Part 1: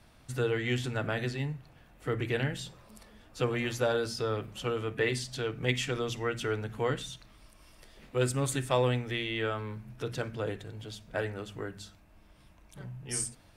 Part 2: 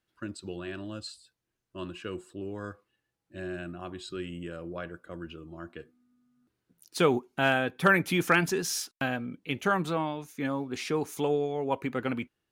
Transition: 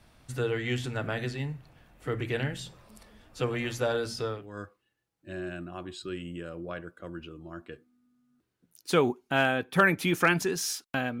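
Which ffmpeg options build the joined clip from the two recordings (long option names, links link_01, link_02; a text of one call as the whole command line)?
ffmpeg -i cue0.wav -i cue1.wav -filter_complex "[0:a]apad=whole_dur=11.2,atrim=end=11.2,atrim=end=4.6,asetpts=PTS-STARTPTS[link_01];[1:a]atrim=start=2.33:end=9.27,asetpts=PTS-STARTPTS[link_02];[link_01][link_02]acrossfade=duration=0.34:curve1=qua:curve2=qua" out.wav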